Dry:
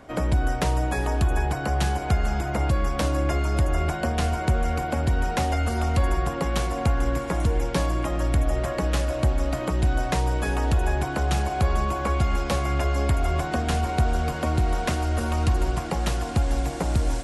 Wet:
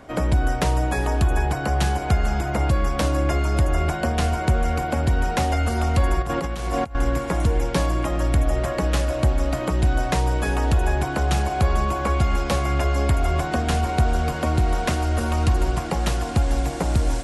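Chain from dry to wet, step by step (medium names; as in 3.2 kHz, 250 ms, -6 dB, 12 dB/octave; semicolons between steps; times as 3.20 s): 6.21–6.95 s: compressor with a negative ratio -27 dBFS, ratio -0.5; trim +2.5 dB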